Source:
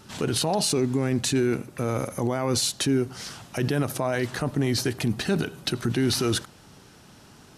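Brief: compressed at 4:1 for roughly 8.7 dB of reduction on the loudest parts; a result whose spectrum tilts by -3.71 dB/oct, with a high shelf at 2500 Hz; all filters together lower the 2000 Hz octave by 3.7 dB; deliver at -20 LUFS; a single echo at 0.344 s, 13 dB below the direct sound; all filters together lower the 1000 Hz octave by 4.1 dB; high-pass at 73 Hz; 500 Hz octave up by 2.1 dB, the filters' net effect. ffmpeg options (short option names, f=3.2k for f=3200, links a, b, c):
-af "highpass=73,equalizer=f=500:t=o:g=4.5,equalizer=f=1k:t=o:g=-7.5,equalizer=f=2k:t=o:g=-7,highshelf=f=2.5k:g=9,acompressor=threshold=-27dB:ratio=4,aecho=1:1:344:0.224,volume=10dB"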